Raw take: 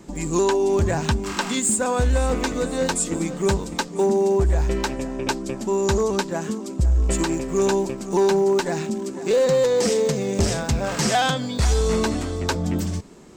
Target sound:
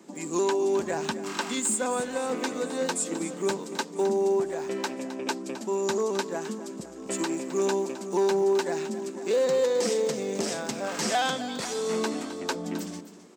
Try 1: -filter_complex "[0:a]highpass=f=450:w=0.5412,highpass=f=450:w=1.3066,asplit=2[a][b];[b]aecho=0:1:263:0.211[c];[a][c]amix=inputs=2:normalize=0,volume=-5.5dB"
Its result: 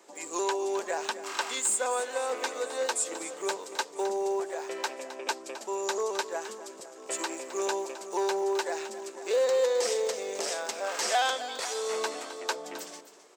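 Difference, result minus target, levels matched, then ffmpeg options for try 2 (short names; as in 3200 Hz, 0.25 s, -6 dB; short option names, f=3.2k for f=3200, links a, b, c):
250 Hz band -8.5 dB
-filter_complex "[0:a]highpass=f=210:w=0.5412,highpass=f=210:w=1.3066,asplit=2[a][b];[b]aecho=0:1:263:0.211[c];[a][c]amix=inputs=2:normalize=0,volume=-5.5dB"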